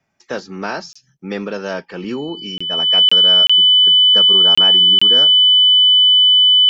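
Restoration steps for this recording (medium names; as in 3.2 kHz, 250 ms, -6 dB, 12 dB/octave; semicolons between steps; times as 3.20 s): band-stop 3 kHz, Q 30; interpolate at 0.93/2.58/3.09/3.47/4.55/4.99 s, 25 ms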